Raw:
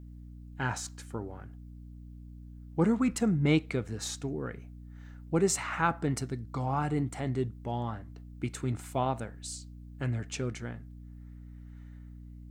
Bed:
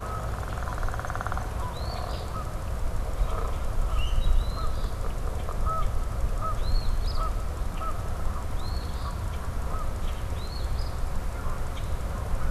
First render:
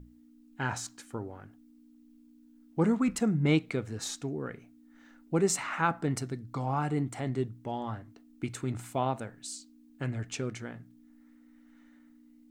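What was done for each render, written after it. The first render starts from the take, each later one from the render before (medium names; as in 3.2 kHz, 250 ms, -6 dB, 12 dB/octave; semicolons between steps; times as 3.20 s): hum notches 60/120/180 Hz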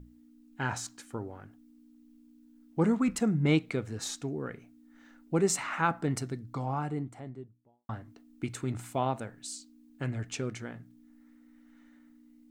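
6.29–7.89 s: studio fade out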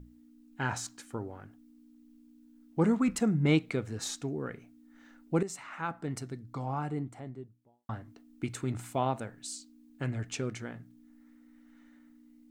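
5.43–7.08 s: fade in, from -14 dB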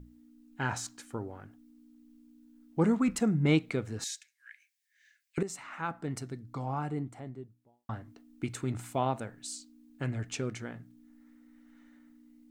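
4.04–5.38 s: rippled Chebyshev high-pass 1.6 kHz, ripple 3 dB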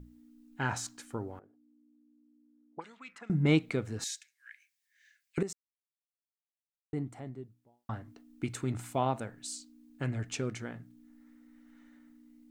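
1.39–3.30 s: auto-wah 390–3700 Hz, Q 2.7, up, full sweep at -22 dBFS; 5.53–6.93 s: mute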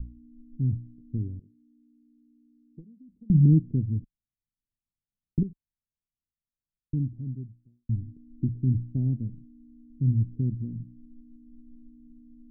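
inverse Chebyshev low-pass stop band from 1.2 kHz, stop band 70 dB; tilt EQ -4 dB/octave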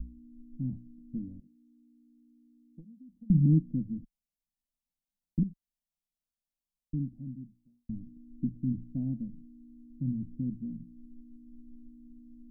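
static phaser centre 400 Hz, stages 6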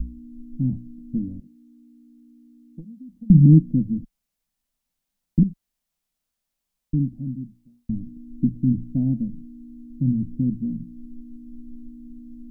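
trim +11 dB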